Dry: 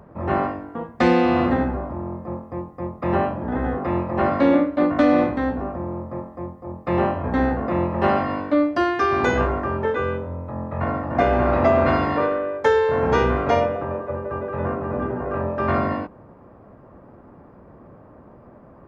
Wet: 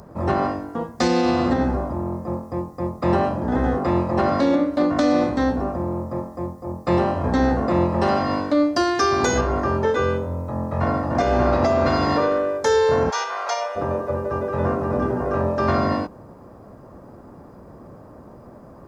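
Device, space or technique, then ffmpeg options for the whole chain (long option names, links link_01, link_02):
over-bright horn tweeter: -filter_complex "[0:a]highshelf=frequency=3700:width_type=q:width=1.5:gain=13,alimiter=limit=-13dB:level=0:latency=1:release=182,asplit=3[link_01][link_02][link_03];[link_01]afade=type=out:start_time=13.09:duration=0.02[link_04];[link_02]highpass=frequency=720:width=0.5412,highpass=frequency=720:width=1.3066,afade=type=in:start_time=13.09:duration=0.02,afade=type=out:start_time=13.75:duration=0.02[link_05];[link_03]afade=type=in:start_time=13.75:duration=0.02[link_06];[link_04][link_05][link_06]amix=inputs=3:normalize=0,volume=3.5dB"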